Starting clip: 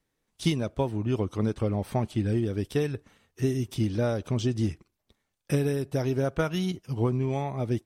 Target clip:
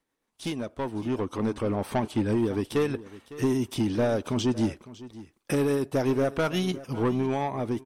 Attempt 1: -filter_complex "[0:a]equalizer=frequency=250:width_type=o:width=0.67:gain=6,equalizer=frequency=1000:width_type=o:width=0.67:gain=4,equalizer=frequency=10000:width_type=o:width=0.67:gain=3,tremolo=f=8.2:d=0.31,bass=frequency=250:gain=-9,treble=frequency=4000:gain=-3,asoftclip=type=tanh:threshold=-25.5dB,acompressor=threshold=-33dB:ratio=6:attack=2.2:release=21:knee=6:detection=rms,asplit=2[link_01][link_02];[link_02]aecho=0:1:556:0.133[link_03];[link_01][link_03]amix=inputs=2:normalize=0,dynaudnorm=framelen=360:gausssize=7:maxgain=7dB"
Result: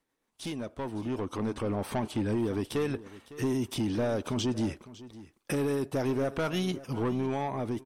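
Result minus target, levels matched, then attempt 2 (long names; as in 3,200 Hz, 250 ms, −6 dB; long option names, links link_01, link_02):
downward compressor: peak gain reduction +5.5 dB
-filter_complex "[0:a]equalizer=frequency=250:width_type=o:width=0.67:gain=6,equalizer=frequency=1000:width_type=o:width=0.67:gain=4,equalizer=frequency=10000:width_type=o:width=0.67:gain=3,tremolo=f=8.2:d=0.31,bass=frequency=250:gain=-9,treble=frequency=4000:gain=-3,asoftclip=type=tanh:threshold=-25.5dB,asplit=2[link_01][link_02];[link_02]aecho=0:1:556:0.133[link_03];[link_01][link_03]amix=inputs=2:normalize=0,dynaudnorm=framelen=360:gausssize=7:maxgain=7dB"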